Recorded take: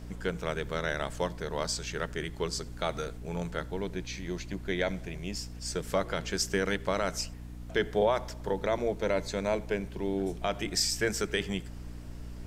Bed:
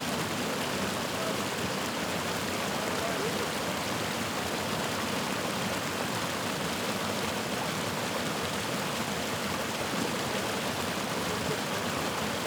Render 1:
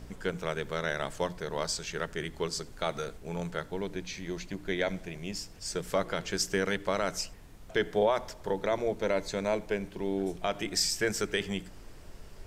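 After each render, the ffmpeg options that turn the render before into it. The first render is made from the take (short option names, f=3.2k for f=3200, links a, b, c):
-af "bandreject=f=60:t=h:w=4,bandreject=f=120:t=h:w=4,bandreject=f=180:t=h:w=4,bandreject=f=240:t=h:w=4,bandreject=f=300:t=h:w=4"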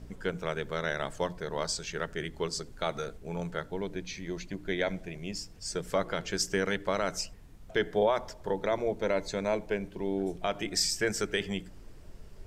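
-af "afftdn=nr=6:nf=-49"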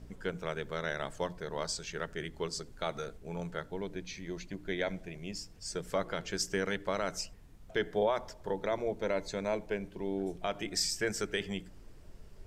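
-af "volume=-3.5dB"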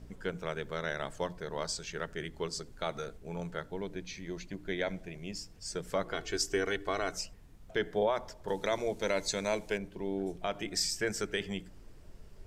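-filter_complex "[0:a]asettb=1/sr,asplit=3[a][b][c];[a]atrim=end=6.134[d];[b]atrim=start=6.13:end=7.13,asetpts=PTS-STARTPTS,afade=t=in:d=0.004:c=qsin,afade=t=out:st=0.996:d=0.004:c=qsin,aecho=1:1:2.7:0.65,atrim=end_sample=44100[e];[c]atrim=start=7.126[f];[d][e]acrossfade=d=0.004:c1=hsin:c2=qsin[g];[g][f]acrossfade=d=0.004:c1=qsin:c2=hsin,asettb=1/sr,asplit=3[h][i][j];[h]atrim=end=8.484[k];[i]atrim=start=8.48:end=9.78,asetpts=PTS-STARTPTS,afade=t=in:d=0.004:c=qsin,afade=t=out:st=1.296:d=0.004:c=qsin,equalizer=f=8.4k:w=0.32:g=13[l];[j]atrim=start=9.776[m];[k][l]acrossfade=d=0.004:c1=hsin:c2=qsin[n];[n][m]acrossfade=d=0.004:c1=qsin:c2=hsin"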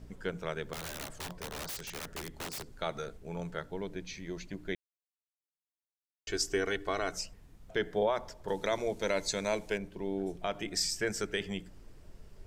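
-filter_complex "[0:a]asettb=1/sr,asplit=3[a][b][c];[a]atrim=end=0.734[d];[b]atrim=start=0.73:end=2.68,asetpts=PTS-STARTPTS,afade=t=in:d=0.004:c=qsin,afade=t=out:st=1.946:d=0.004:c=qsin,aeval=exprs='(mod(50.1*val(0)+1,2)-1)/50.1':c=same[e];[c]atrim=start=2.676[f];[d][e]acrossfade=d=0.004:c1=hsin:c2=qsin[g];[g][f]acrossfade=d=0.004:c1=qsin:c2=hsin,asplit=3[h][i][j];[h]atrim=end=4.75,asetpts=PTS-STARTPTS,afade=t=out:st=4.746:d=0.004:c=hsin[k];[i]atrim=start=4.75:end=6.27,asetpts=PTS-STARTPTS,volume=0[l];[j]atrim=start=6.27,asetpts=PTS-STARTPTS,afade=t=in:d=0.004:c=hsin[m];[k][l][m]concat=n=3:v=0:a=1"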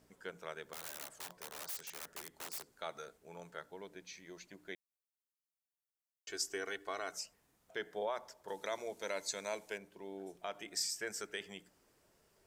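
-af "highpass=f=1.3k:p=1,equalizer=f=3.2k:t=o:w=2.5:g=-7"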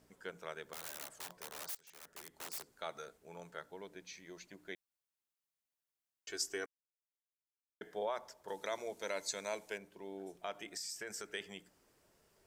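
-filter_complex "[0:a]asettb=1/sr,asplit=3[a][b][c];[a]atrim=end=10.694[d];[b]atrim=start=10.69:end=11.28,asetpts=PTS-STARTPTS,afade=t=in:d=0.004:c=qsin,afade=t=out:st=0.586:d=0.004:c=qsin,acompressor=threshold=-39dB:ratio=10:attack=3.2:release=140:knee=1:detection=peak[e];[c]atrim=start=11.276[f];[d][e]acrossfade=d=0.004:c1=hsin:c2=qsin[g];[g][f]acrossfade=d=0.004:c1=qsin:c2=hsin,asplit=4[h][i][j][k];[h]atrim=end=1.75,asetpts=PTS-STARTPTS,afade=t=out:st=1.746:d=0.004:c=hsin:silence=0.0891251[l];[i]atrim=start=1.75:end=6.66,asetpts=PTS-STARTPTS,afade=t=in:d=0.74:silence=0.0891251,afade=t=out:st=4.906:d=0.004:c=hsin[m];[j]atrim=start=6.66:end=7.81,asetpts=PTS-STARTPTS,volume=0[n];[k]atrim=start=7.81,asetpts=PTS-STARTPTS,afade=t=in:d=0.004:c=hsin[o];[l][m][n][o]concat=n=4:v=0:a=1"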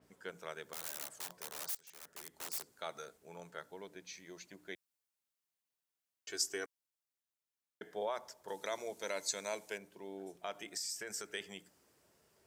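-af "highpass=63,adynamicequalizer=threshold=0.00158:dfrequency=4300:dqfactor=0.7:tfrequency=4300:tqfactor=0.7:attack=5:release=100:ratio=0.375:range=2:mode=boostabove:tftype=highshelf"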